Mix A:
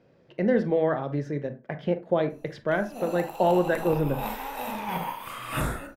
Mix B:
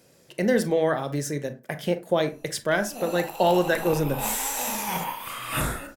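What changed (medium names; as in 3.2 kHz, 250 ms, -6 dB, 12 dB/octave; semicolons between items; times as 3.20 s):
speech: remove distance through air 250 m; master: add treble shelf 2.4 kHz +8 dB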